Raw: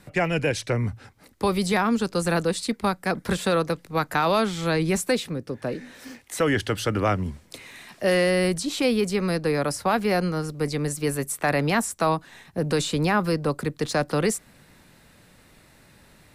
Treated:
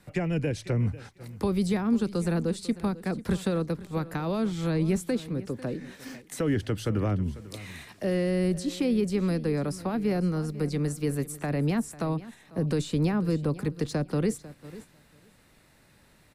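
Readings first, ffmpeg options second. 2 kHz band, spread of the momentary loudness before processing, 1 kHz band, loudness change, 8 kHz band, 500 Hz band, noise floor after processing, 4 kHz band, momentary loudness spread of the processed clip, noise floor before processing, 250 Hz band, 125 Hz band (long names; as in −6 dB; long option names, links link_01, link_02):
−12.0 dB, 9 LU, −12.0 dB, −4.0 dB, −9.5 dB, −6.0 dB, −60 dBFS, −10.5 dB, 11 LU, −55 dBFS, −1.0 dB, 0.0 dB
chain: -filter_complex "[0:a]acrossover=split=390[link_01][link_02];[link_02]acompressor=threshold=-40dB:ratio=3[link_03];[link_01][link_03]amix=inputs=2:normalize=0,aecho=1:1:496|992:0.141|0.0367,agate=range=-6dB:threshold=-44dB:ratio=16:detection=peak"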